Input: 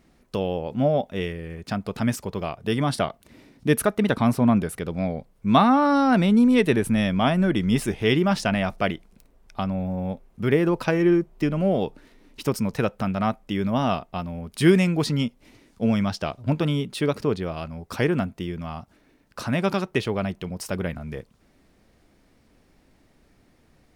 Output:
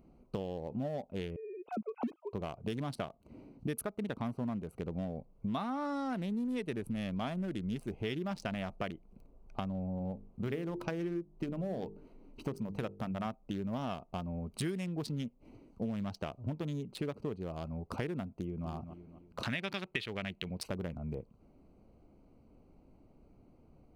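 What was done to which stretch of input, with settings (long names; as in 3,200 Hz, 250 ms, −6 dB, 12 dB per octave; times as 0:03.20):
0:01.36–0:02.33: three sine waves on the formant tracks
0:09.98–0:13.27: mains-hum notches 50/100/150/200/250/300/350/400/450 Hz
0:18.27–0:18.68: delay throw 250 ms, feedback 40%, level −13 dB
0:19.43–0:20.69: flat-topped bell 2,700 Hz +12.5 dB
whole clip: adaptive Wiener filter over 25 samples; high-shelf EQ 6,400 Hz +7 dB; downward compressor 6 to 1, threshold −34 dBFS; level −1 dB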